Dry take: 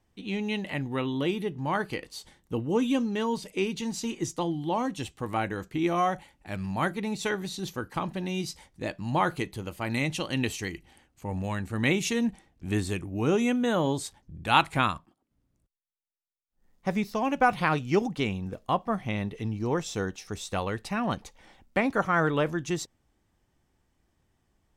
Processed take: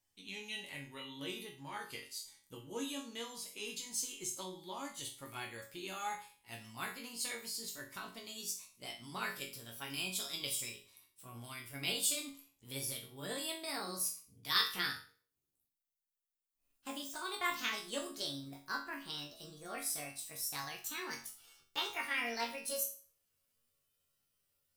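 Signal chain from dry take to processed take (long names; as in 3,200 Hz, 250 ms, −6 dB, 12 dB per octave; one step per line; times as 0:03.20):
pitch glide at a constant tempo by +8.5 semitones starting unshifted
first-order pre-emphasis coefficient 0.9
resonators tuned to a chord F#2 major, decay 0.39 s
level +15.5 dB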